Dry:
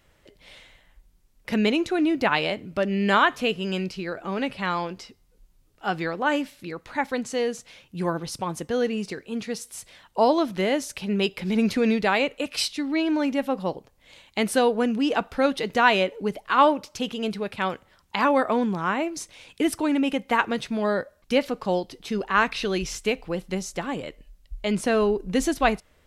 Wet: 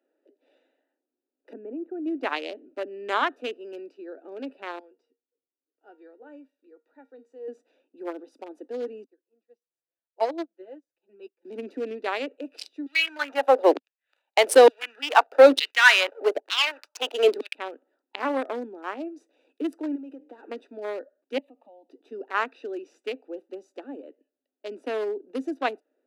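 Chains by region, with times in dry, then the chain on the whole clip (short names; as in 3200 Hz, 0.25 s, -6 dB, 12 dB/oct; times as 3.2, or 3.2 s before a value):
1.53–2.06 low shelf 110 Hz +11.5 dB + level quantiser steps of 13 dB + Gaussian blur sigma 4.7 samples
4.79–7.48 low shelf 220 Hz -4.5 dB + resonator 470 Hz, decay 0.24 s, mix 80%
9.04–11.45 low shelf 410 Hz -3 dB + comb 5.9 ms, depth 66% + upward expander 2.5:1, over -36 dBFS
12.86–17.55 sample leveller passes 3 + LFO high-pass saw down 1.1 Hz 310–3500 Hz
19.95–20.43 hard clip -19 dBFS + de-hum 150.1 Hz, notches 4 + compressor 16:1, threshold -30 dBFS
21.38–21.89 compressor 5:1, threshold -32 dBFS + fixed phaser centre 1500 Hz, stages 6
whole clip: Wiener smoothing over 41 samples; steep high-pass 260 Hz 72 dB/oct; gain -4 dB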